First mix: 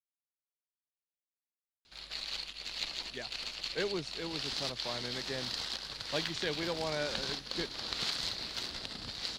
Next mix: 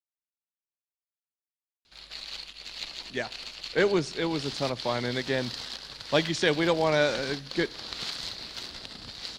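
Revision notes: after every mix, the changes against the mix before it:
speech +10.5 dB; reverb: on, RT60 0.95 s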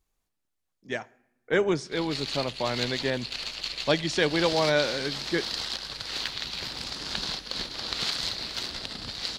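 speech: entry -2.25 s; background +5.5 dB

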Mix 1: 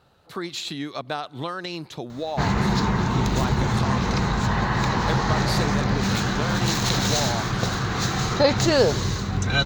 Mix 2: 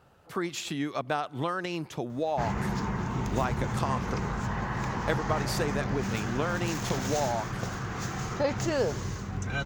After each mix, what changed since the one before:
background -9.0 dB; master: add bell 4000 Hz -12 dB 0.39 oct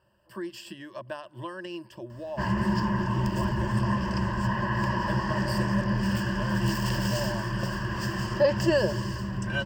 speech -10.0 dB; master: add ripple EQ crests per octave 1.3, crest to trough 17 dB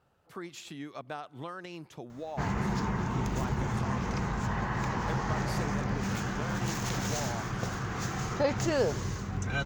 master: remove ripple EQ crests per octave 1.3, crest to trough 17 dB

